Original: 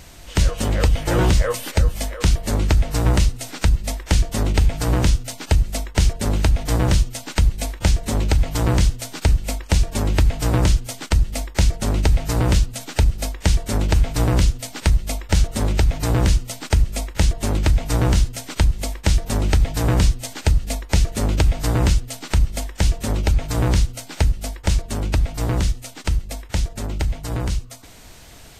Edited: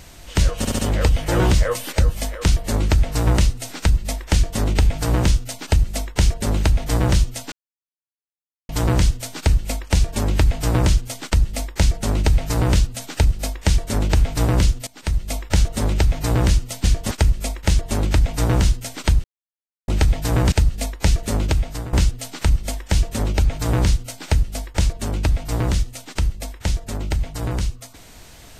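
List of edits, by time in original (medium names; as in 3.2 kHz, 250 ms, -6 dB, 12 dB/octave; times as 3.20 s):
0.58 s: stutter 0.07 s, 4 plays
4.12–4.39 s: copy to 16.63 s
7.31–8.48 s: mute
14.66–15.15 s: fade in linear, from -18 dB
18.76–19.40 s: mute
20.04–20.41 s: delete
21.06–21.82 s: fade out equal-power, to -16.5 dB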